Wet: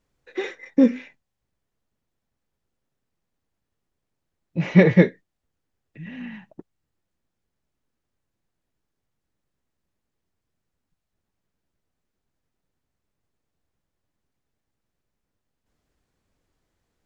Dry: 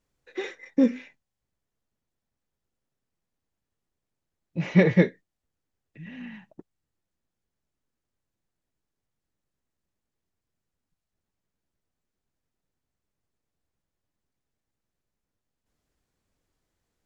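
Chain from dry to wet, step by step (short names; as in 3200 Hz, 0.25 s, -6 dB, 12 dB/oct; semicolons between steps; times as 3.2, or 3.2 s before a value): high shelf 5100 Hz -5.5 dB; gain +4.5 dB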